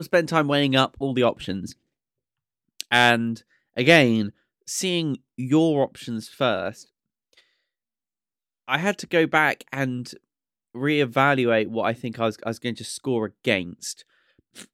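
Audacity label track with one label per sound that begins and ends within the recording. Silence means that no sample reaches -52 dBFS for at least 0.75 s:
2.800000	7.410000	sound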